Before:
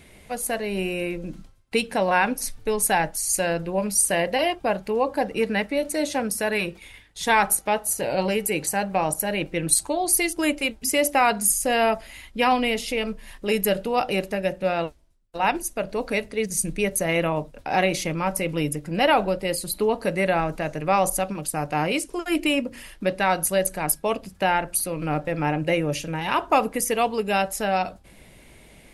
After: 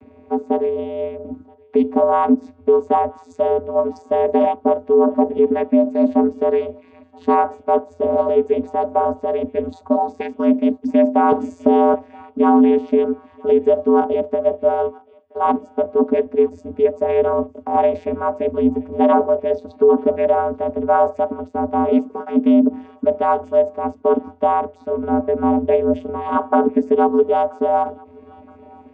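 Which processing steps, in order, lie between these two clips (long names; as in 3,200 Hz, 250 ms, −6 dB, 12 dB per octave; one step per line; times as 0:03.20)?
Savitzky-Golay smoothing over 65 samples
channel vocoder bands 16, square 85.9 Hz
feedback echo with a high-pass in the loop 974 ms, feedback 56%, high-pass 850 Hz, level −24 dB
boost into a limiter +14.5 dB
0:11.32–0:11.94: multiband upward and downward compressor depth 70%
level −4.5 dB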